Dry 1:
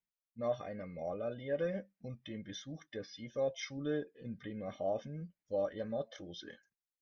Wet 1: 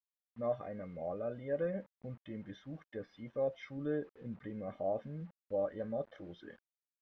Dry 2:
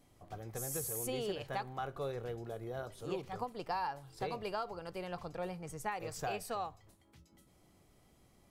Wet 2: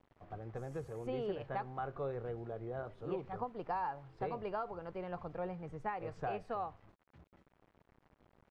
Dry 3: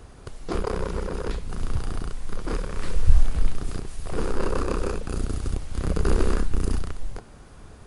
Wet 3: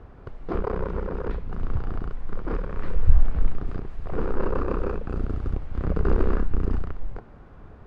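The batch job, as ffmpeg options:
-af "acrusher=bits=9:mix=0:aa=0.000001,lowpass=1700"

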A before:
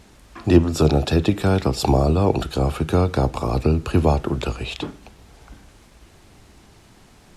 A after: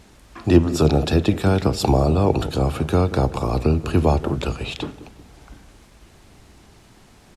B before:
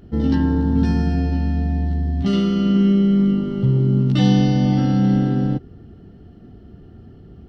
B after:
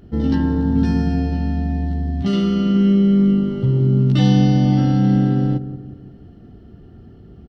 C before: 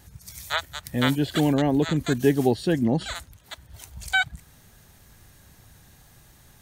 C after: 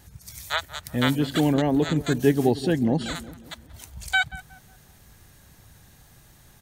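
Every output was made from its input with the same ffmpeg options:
-filter_complex "[0:a]asplit=2[s0][s1];[s1]adelay=182,lowpass=f=920:p=1,volume=0.224,asplit=2[s2][s3];[s3]adelay=182,lowpass=f=920:p=1,volume=0.49,asplit=2[s4][s5];[s5]adelay=182,lowpass=f=920:p=1,volume=0.49,asplit=2[s6][s7];[s7]adelay=182,lowpass=f=920:p=1,volume=0.49,asplit=2[s8][s9];[s9]adelay=182,lowpass=f=920:p=1,volume=0.49[s10];[s0][s2][s4][s6][s8][s10]amix=inputs=6:normalize=0"

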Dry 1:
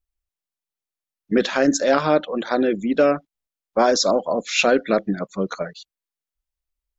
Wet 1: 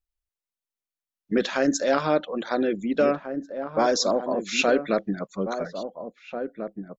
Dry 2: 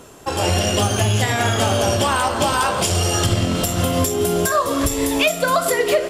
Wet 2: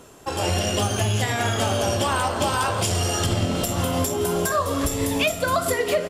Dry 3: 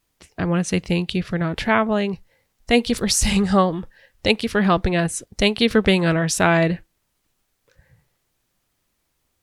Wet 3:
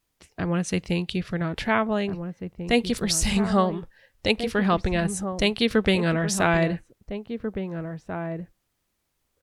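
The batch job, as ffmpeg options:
-filter_complex "[0:a]asplit=2[s0][s1];[s1]adelay=1691,volume=0.398,highshelf=f=4000:g=-38[s2];[s0][s2]amix=inputs=2:normalize=0,volume=0.596"

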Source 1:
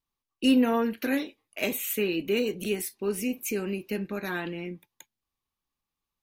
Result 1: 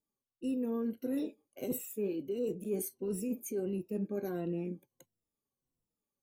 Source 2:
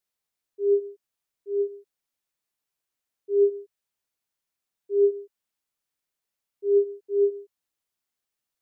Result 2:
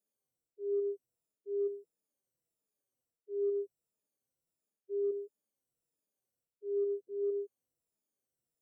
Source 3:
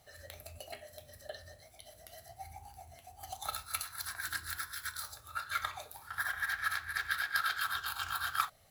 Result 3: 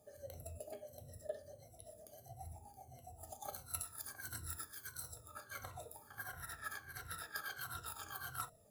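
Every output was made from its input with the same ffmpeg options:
-af "afftfilt=real='re*pow(10,15/40*sin(2*PI*(2*log(max(b,1)*sr/1024/100)/log(2)-(-1.5)*(pts-256)/sr)))':imag='im*pow(10,15/40*sin(2*PI*(2*log(max(b,1)*sr/1024/100)/log(2)-(-1.5)*(pts-256)/sr)))':win_size=1024:overlap=0.75,equalizer=f=125:t=o:w=1:g=9,equalizer=f=250:t=o:w=1:g=6,equalizer=f=500:t=o:w=1:g=10,equalizer=f=1000:t=o:w=1:g=-4,equalizer=f=2000:t=o:w=1:g=-10,equalizer=f=4000:t=o:w=1:g=-8,equalizer=f=8000:t=o:w=1:g=4,areverse,acompressor=threshold=0.0631:ratio=8,areverse,volume=0.398"

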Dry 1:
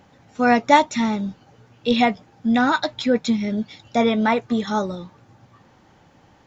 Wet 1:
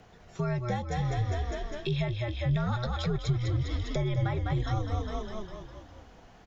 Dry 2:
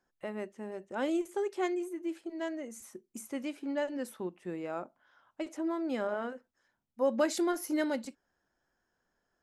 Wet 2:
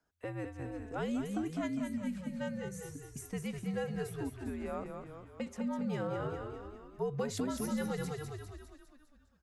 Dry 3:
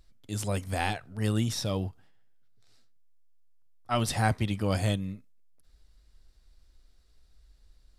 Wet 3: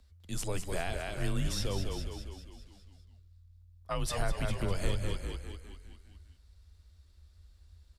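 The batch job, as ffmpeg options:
-filter_complex "[0:a]asplit=8[s0][s1][s2][s3][s4][s5][s6][s7];[s1]adelay=202,afreqshift=-38,volume=0.473[s8];[s2]adelay=404,afreqshift=-76,volume=0.266[s9];[s3]adelay=606,afreqshift=-114,volume=0.148[s10];[s4]adelay=808,afreqshift=-152,volume=0.0832[s11];[s5]adelay=1010,afreqshift=-190,volume=0.0468[s12];[s6]adelay=1212,afreqshift=-228,volume=0.026[s13];[s7]adelay=1414,afreqshift=-266,volume=0.0146[s14];[s0][s8][s9][s10][s11][s12][s13][s14]amix=inputs=8:normalize=0,acrossover=split=180[s15][s16];[s16]acompressor=threshold=0.0316:ratio=12[s17];[s15][s17]amix=inputs=2:normalize=0,afreqshift=-87,volume=0.841"

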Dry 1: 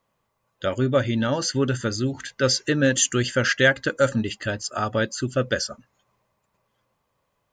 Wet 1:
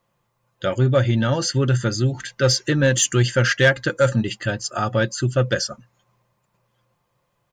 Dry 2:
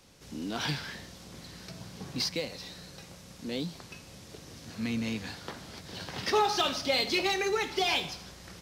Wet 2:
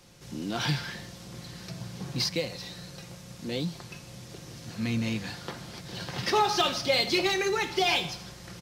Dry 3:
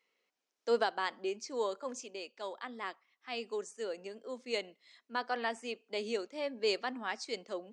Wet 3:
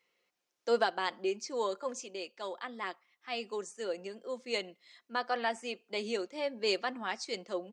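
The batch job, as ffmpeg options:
-af "equalizer=f=120:w=3.8:g=9,aecho=1:1:5.7:0.36,acontrast=62,volume=0.596"

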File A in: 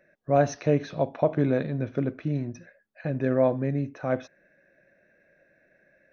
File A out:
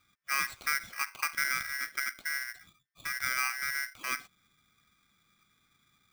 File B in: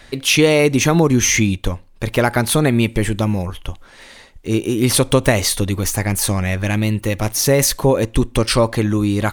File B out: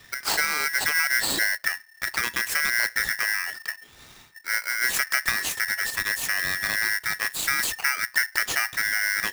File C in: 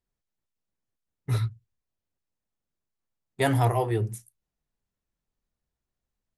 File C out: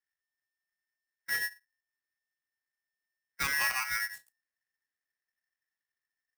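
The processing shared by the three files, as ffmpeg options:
-filter_complex "[0:a]highshelf=f=4600:g=-4.5,acrossover=split=250|3000[s0][s1][s2];[s1]acompressor=threshold=0.0708:ratio=3[s3];[s0][s3][s2]amix=inputs=3:normalize=0,aeval=exprs='val(0)*sgn(sin(2*PI*1800*n/s))':c=same,volume=0.447"

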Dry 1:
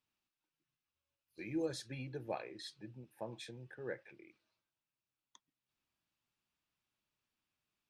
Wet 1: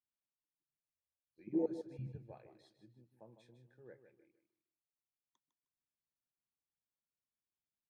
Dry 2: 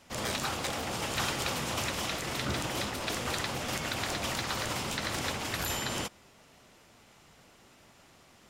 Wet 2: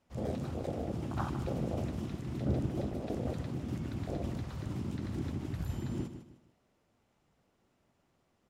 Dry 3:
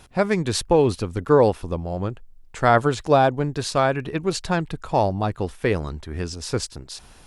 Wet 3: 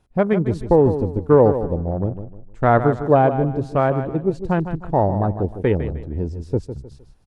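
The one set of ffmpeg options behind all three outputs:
-af "afwtdn=0.0398,tiltshelf=f=1100:g=5.5,aecho=1:1:154|308|462:0.299|0.0955|0.0306,volume=0.891"

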